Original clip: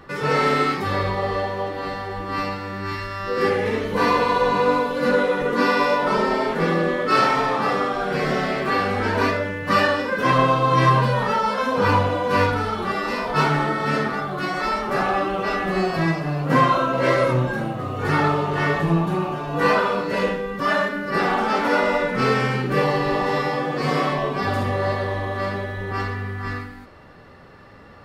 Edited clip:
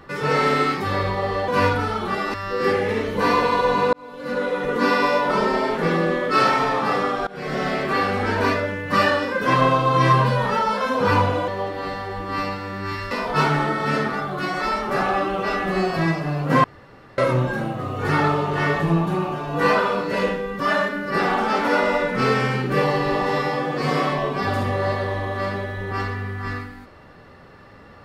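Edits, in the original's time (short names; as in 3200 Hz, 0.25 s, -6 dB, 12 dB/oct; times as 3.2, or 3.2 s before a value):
1.48–3.11 swap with 12.25–13.11
4.7–5.57 fade in
8.04–8.46 fade in, from -20.5 dB
16.64–17.18 room tone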